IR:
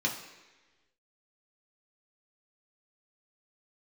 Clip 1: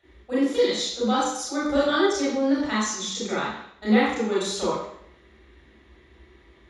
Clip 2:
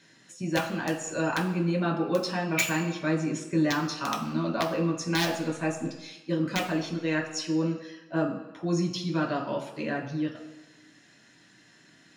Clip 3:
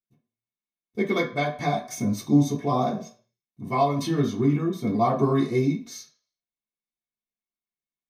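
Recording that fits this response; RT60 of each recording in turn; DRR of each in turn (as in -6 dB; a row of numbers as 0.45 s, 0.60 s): 2; 0.70 s, 1.2 s, 0.50 s; -10.0 dB, -1.5 dB, -9.0 dB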